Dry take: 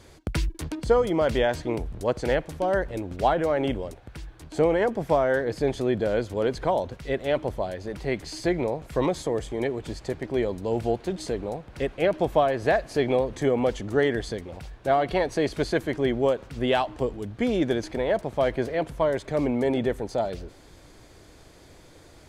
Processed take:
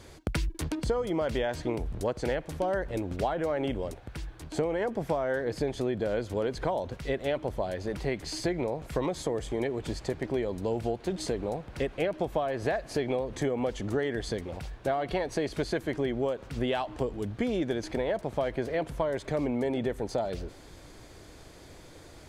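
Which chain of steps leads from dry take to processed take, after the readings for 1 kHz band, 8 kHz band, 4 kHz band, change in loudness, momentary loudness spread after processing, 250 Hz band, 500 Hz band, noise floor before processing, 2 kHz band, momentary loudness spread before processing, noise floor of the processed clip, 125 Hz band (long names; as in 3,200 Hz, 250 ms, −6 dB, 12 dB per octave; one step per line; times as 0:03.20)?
−6.5 dB, −1.0 dB, −4.0 dB, −5.5 dB, 7 LU, −4.5 dB, −5.5 dB, −51 dBFS, −5.5 dB, 9 LU, −50 dBFS, −3.0 dB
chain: downward compressor, threshold −27 dBFS, peak gain reduction 11.5 dB
level +1 dB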